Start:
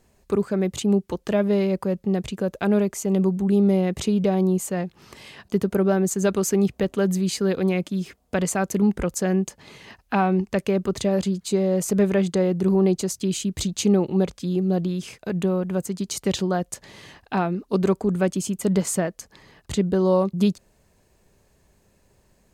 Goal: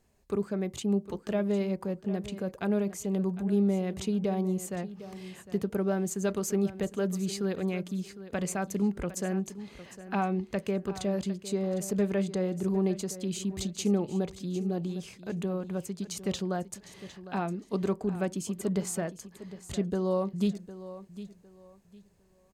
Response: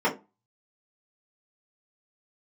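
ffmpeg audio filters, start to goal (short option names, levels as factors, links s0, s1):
-filter_complex "[0:a]aecho=1:1:756|1512|2268:0.188|0.0471|0.0118,asplit=2[s0][s1];[1:a]atrim=start_sample=2205[s2];[s1][s2]afir=irnorm=-1:irlink=0,volume=0.0266[s3];[s0][s3]amix=inputs=2:normalize=0,volume=0.376"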